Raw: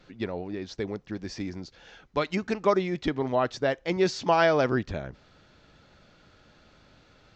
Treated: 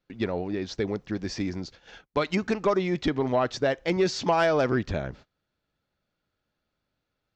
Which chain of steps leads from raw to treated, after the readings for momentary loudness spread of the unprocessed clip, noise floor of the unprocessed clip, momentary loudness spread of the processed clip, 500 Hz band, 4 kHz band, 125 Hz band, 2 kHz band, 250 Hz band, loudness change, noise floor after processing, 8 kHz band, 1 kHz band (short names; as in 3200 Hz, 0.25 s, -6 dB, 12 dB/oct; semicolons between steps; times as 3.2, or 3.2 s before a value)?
15 LU, -59 dBFS, 10 LU, +0.5 dB, +1.5 dB, +2.0 dB, 0.0 dB, +2.0 dB, +1.0 dB, -82 dBFS, n/a, -0.5 dB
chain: gate -50 dBFS, range -28 dB; compressor 2:1, threshold -25 dBFS, peak gain reduction 5.5 dB; soft clip -17 dBFS, distortion -21 dB; gain +4.5 dB